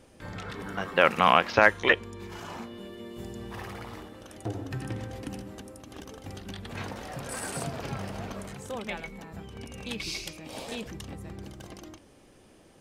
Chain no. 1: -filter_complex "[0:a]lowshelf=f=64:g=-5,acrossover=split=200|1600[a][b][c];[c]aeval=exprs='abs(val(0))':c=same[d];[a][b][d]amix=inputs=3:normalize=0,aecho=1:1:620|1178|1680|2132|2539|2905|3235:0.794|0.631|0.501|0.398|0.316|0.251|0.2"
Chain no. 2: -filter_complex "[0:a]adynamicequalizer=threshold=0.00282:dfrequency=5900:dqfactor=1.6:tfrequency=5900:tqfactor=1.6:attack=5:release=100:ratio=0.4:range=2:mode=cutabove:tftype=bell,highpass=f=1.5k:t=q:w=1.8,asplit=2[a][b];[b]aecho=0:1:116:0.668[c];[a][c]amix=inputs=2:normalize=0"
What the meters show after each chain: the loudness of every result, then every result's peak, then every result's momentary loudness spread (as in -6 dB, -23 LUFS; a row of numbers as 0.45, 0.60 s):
-29.0, -23.5 LUFS; -4.0, -1.5 dBFS; 15, 24 LU